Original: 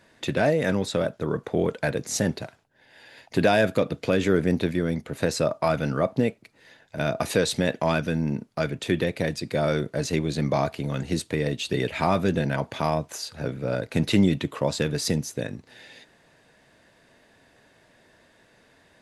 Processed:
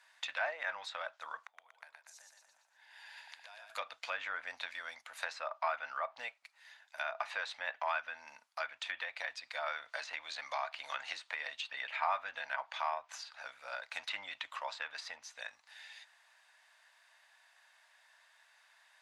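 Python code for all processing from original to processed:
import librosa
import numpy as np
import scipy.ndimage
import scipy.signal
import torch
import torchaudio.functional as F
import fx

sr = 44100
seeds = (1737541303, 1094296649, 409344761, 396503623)

y = fx.chain(x, sr, fx.peak_eq(hz=940.0, db=4.0, octaves=0.33),
    fx.gate_flip(shuts_db=-24.0, range_db=-25),
    fx.echo_split(split_hz=430.0, low_ms=271, high_ms=119, feedback_pct=52, wet_db=-4.0), at=(1.46, 3.7))
y = fx.chain(y, sr, fx.peak_eq(hz=200.0, db=-8.0, octaves=0.31),
    fx.band_squash(depth_pct=100), at=(9.66, 11.51))
y = scipy.signal.sosfilt(scipy.signal.cheby2(4, 40, 420.0, 'highpass', fs=sr, output='sos'), y)
y = fx.env_lowpass_down(y, sr, base_hz=2200.0, full_db=-29.5)
y = F.gain(torch.from_numpy(y), -4.5).numpy()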